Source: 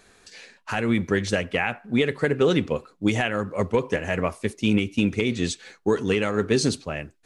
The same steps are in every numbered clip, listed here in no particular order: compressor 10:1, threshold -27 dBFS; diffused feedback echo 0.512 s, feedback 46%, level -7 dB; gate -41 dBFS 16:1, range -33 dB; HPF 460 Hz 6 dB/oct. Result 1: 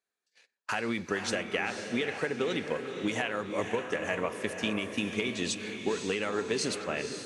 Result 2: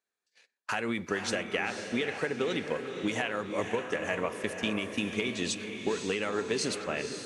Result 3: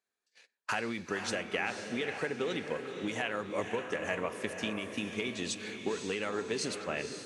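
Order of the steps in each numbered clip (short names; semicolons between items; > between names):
HPF > compressor > diffused feedback echo > gate; HPF > gate > compressor > diffused feedback echo; compressor > diffused feedback echo > gate > HPF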